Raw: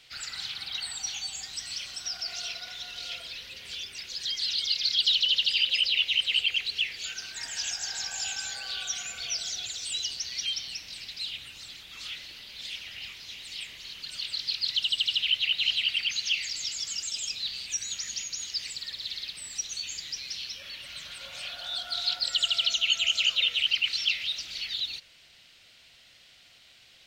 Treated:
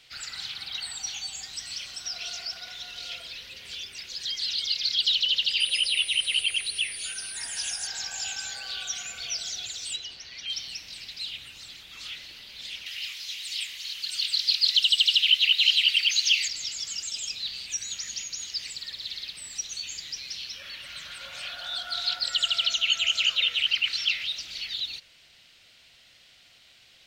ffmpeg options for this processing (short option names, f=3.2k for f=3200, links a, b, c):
-filter_complex "[0:a]asettb=1/sr,asplit=3[a][b][c];[a]atrim=end=5.604[d];[b]atrim=start=5.6:end=7.87,asetpts=PTS-STARTPTS,afade=t=in:d=0.004:c=qsin,afade=t=out:st=2.266:d=0.004:c=qsin,aeval=exprs='val(0)+0.0158*sin(2*PI*9400*n/s)':c=same[e];[c]atrim=start=7.866[f];[d][e]acrossfade=d=0.004:c1=hsin:c2=qsin[g];[g][f]acrossfade=d=0.004:c1=qsin:c2=hsin,asettb=1/sr,asplit=3[h][i][j];[h]atrim=end=9.964[k];[i]atrim=start=9.96:end=10.5,asetpts=PTS-STARTPTS,afade=t=in:d=0.004:c=qsin,afade=t=out:st=0.536:d=0.004:c=qsin,bass=f=250:g=-3,treble=f=4k:g=-14[l];[j]atrim=start=10.496[m];[k][l]acrossfade=d=0.004:c1=hsin:c2=qsin[n];[n][m]acrossfade=d=0.004:c1=qsin:c2=hsin,asettb=1/sr,asplit=3[o][p][q];[o]atrim=end=12.864[r];[p]atrim=start=12.86:end=16.48,asetpts=PTS-STARTPTS,afade=t=in:d=0.004:c=qsin,afade=t=out:st=3.616:d=0.004:c=qsin,tiltshelf=f=1.4k:g=-9[s];[q]atrim=start=16.476[t];[r][s]acrossfade=d=0.004:c1=hsin:c2=qsin[u];[u][t]acrossfade=d=0.004:c1=qsin:c2=hsin,asettb=1/sr,asplit=3[v][w][x];[v]atrim=end=20.534[y];[w]atrim=start=20.53:end=24.26,asetpts=PTS-STARTPTS,afade=t=in:d=0.004:c=qsin,afade=t=out:st=3.726:d=0.004:c=qsin,equalizer=f=1.5k:w=1.5:g=5.5[z];[x]atrim=start=24.256[aa];[y][z]acrossfade=d=0.004:c1=hsin:c2=qsin[ab];[ab][aa]acrossfade=d=0.004:c1=qsin:c2=hsin,asplit=3[ac][ad][ae];[ac]atrim=end=2.162[af];[ad]atrim=start=2.158:end=2.572,asetpts=PTS-STARTPTS,areverse[ag];[ae]atrim=start=2.568[ah];[af][ag]acrossfade=d=0.004:c1=hsin:c2=hsin[ai];[ai][ah]acrossfade=d=0.004:c1=hsin:c2=hsin"